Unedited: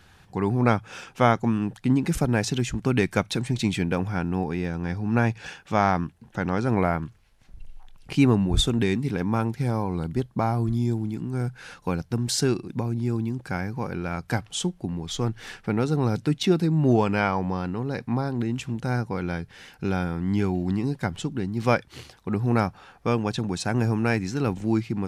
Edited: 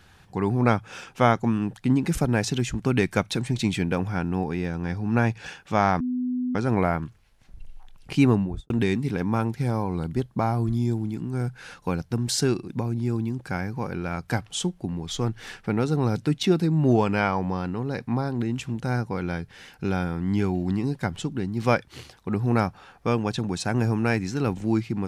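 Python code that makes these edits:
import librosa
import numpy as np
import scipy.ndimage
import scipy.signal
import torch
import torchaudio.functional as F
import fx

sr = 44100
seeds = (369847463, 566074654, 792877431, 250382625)

y = fx.studio_fade_out(x, sr, start_s=8.3, length_s=0.4)
y = fx.edit(y, sr, fx.bleep(start_s=6.0, length_s=0.55, hz=250.0, db=-23.5), tone=tone)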